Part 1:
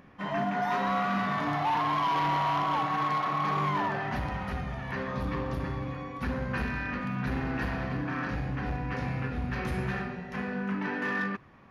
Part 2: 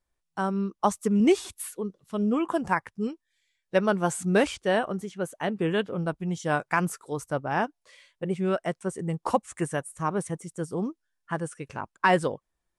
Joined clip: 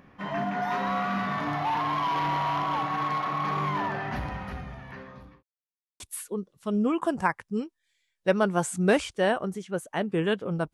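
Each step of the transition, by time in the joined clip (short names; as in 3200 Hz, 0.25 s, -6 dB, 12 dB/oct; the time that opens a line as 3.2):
part 1
4.17–5.43 fade out linear
5.43–6 mute
6 switch to part 2 from 1.47 s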